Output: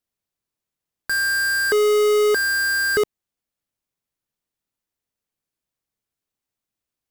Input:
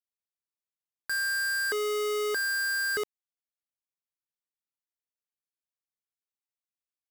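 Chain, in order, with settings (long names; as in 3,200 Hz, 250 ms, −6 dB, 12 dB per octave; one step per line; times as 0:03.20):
low-shelf EQ 470 Hz +10 dB
level +7.5 dB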